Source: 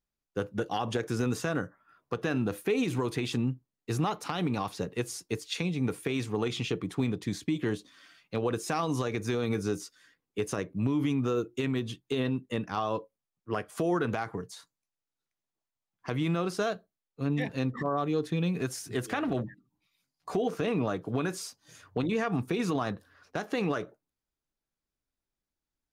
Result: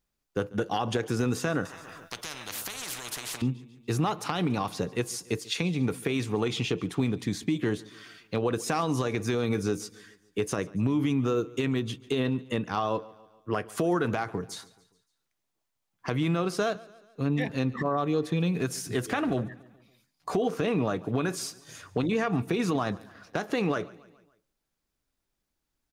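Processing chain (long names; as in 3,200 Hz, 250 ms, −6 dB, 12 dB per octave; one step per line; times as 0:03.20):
in parallel at +2.5 dB: downward compressor, threshold −40 dBFS, peak gain reduction 15.5 dB
on the sum: repeating echo 142 ms, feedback 52%, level −21.5 dB
0:01.65–0:03.42: every bin compressed towards the loudest bin 10 to 1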